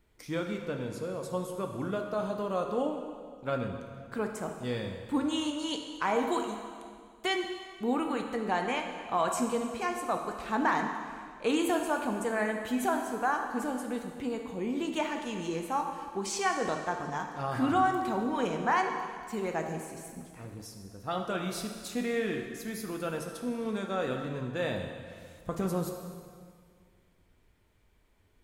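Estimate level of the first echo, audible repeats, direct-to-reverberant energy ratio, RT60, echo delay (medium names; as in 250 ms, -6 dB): no echo, no echo, 3.0 dB, 2.0 s, no echo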